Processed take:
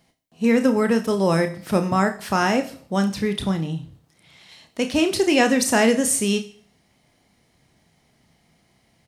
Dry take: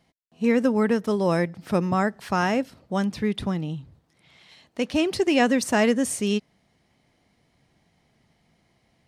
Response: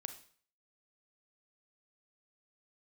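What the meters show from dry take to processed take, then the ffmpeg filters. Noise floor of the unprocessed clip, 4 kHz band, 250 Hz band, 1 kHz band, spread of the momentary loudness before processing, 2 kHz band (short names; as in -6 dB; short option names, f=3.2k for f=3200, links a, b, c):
-68 dBFS, +5.0 dB, +2.5 dB, +3.0 dB, 9 LU, +3.5 dB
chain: -filter_complex "[0:a]asplit=2[a][b];[b]adelay=31,volume=-9dB[c];[a][c]amix=inputs=2:normalize=0,asplit=2[d][e];[1:a]atrim=start_sample=2205,highshelf=f=5.1k:g=11.5[f];[e][f]afir=irnorm=-1:irlink=0,volume=6dB[g];[d][g]amix=inputs=2:normalize=0,volume=-5dB"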